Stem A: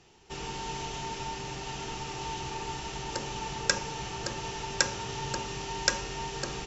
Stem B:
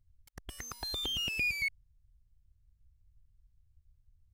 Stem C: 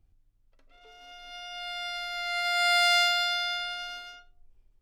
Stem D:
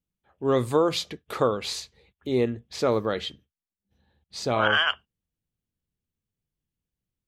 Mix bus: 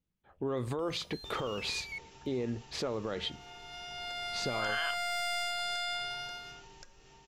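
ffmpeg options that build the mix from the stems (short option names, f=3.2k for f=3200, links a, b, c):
-filter_complex "[0:a]bandreject=f=960:w=14,acompressor=threshold=-42dB:ratio=10,adelay=950,volume=-17dB[a];[1:a]adelay=300,volume=-7.5dB[b];[2:a]aeval=exprs='(tanh(14.1*val(0)+0.6)-tanh(0.6))/14.1':c=same,adelay=2400,volume=-8dB[c];[3:a]acompressor=threshold=-28dB:ratio=6,volume=2dB[d];[b][d]amix=inputs=2:normalize=0,lowpass=f=3.4k:p=1,alimiter=level_in=1.5dB:limit=-24dB:level=0:latency=1:release=41,volume=-1.5dB,volume=0dB[e];[a][c]amix=inputs=2:normalize=0,dynaudnorm=f=120:g=11:m=7.5dB,alimiter=level_in=3dB:limit=-24dB:level=0:latency=1:release=408,volume=-3dB,volume=0dB[f];[e][f]amix=inputs=2:normalize=0"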